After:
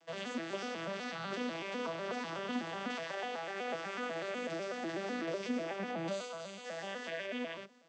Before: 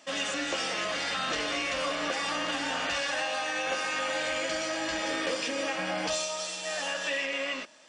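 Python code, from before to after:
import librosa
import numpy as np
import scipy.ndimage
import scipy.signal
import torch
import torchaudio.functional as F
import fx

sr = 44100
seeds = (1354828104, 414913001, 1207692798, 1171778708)

y = fx.vocoder_arp(x, sr, chord='minor triad', root=52, every_ms=124)
y = fx.notch(y, sr, hz=5400.0, q=5.8, at=(5.91, 6.65))
y = y * 10.0 ** (-7.0 / 20.0)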